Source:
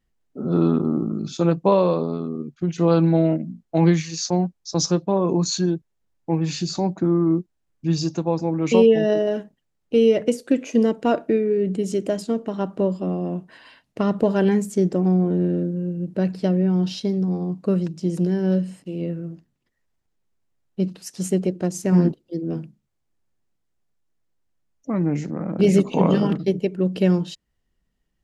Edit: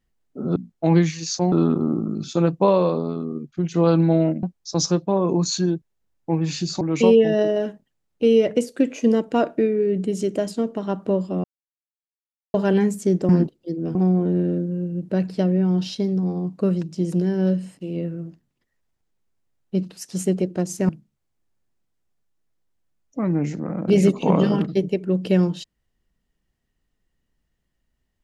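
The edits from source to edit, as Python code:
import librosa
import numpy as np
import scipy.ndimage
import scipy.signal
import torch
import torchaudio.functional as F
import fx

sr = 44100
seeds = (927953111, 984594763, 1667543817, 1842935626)

y = fx.edit(x, sr, fx.move(start_s=3.47, length_s=0.96, to_s=0.56),
    fx.cut(start_s=6.81, length_s=1.71),
    fx.silence(start_s=13.15, length_s=1.1),
    fx.move(start_s=21.94, length_s=0.66, to_s=15.0), tone=tone)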